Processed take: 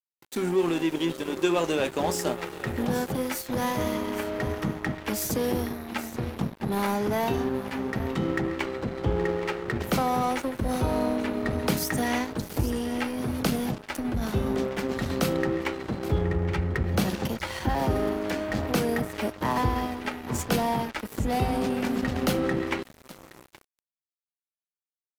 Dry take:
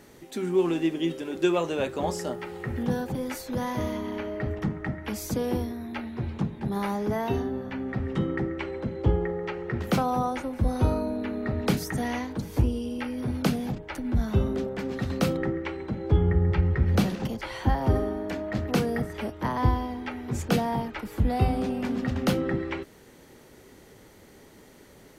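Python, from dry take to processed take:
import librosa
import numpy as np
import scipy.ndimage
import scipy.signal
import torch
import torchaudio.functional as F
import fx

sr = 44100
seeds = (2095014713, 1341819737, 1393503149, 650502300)

p1 = fx.high_shelf(x, sr, hz=8300.0, db=7.5)
p2 = fx.over_compress(p1, sr, threshold_db=-29.0, ratio=-1.0)
p3 = p1 + F.gain(torch.from_numpy(p2), -2.0).numpy()
p4 = fx.low_shelf(p3, sr, hz=150.0, db=-5.5)
p5 = p4 + fx.echo_single(p4, sr, ms=822, db=-13.5, dry=0)
y = np.sign(p5) * np.maximum(np.abs(p5) - 10.0 ** (-34.0 / 20.0), 0.0)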